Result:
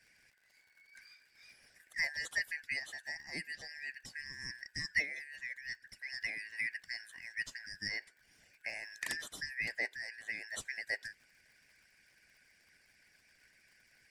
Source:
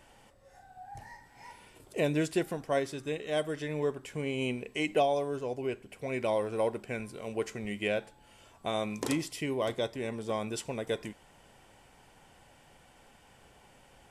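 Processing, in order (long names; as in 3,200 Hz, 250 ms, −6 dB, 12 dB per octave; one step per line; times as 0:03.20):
band-splitting scrambler in four parts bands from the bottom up 3142
surface crackle 100 per second −50 dBFS
harmonic and percussive parts rebalanced harmonic −14 dB
level −3.5 dB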